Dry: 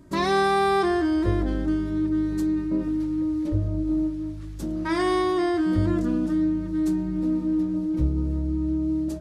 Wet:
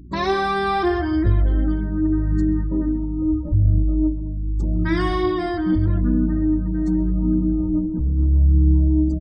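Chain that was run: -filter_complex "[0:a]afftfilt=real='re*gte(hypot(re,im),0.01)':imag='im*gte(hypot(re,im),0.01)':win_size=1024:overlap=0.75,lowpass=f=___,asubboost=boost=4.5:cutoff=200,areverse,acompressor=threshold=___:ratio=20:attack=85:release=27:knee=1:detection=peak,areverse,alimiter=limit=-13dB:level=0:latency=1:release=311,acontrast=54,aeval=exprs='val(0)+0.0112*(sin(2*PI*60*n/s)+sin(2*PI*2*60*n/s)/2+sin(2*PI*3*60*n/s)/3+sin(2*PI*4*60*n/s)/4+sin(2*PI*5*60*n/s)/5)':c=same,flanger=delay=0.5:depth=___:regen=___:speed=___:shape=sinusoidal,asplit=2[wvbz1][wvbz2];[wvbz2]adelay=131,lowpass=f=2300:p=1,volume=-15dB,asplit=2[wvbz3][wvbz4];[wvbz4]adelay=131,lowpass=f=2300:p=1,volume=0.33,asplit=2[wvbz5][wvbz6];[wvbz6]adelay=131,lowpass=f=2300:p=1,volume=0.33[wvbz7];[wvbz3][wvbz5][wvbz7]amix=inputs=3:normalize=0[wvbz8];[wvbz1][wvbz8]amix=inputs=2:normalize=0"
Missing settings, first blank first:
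5400, -23dB, 4, 27, 0.81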